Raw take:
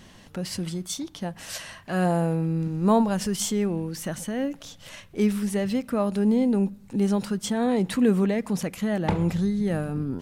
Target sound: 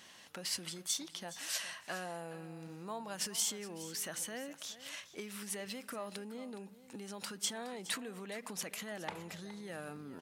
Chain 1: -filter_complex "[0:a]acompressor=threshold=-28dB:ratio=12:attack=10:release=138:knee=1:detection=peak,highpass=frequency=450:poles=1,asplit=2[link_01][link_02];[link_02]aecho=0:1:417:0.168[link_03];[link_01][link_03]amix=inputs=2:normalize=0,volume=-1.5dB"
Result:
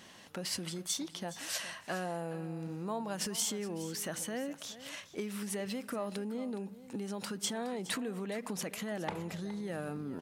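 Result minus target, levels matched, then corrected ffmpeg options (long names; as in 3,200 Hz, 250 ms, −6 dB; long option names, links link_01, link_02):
500 Hz band +3.5 dB
-filter_complex "[0:a]acompressor=threshold=-28dB:ratio=12:attack=10:release=138:knee=1:detection=peak,highpass=frequency=1300:poles=1,asplit=2[link_01][link_02];[link_02]aecho=0:1:417:0.168[link_03];[link_01][link_03]amix=inputs=2:normalize=0,volume=-1.5dB"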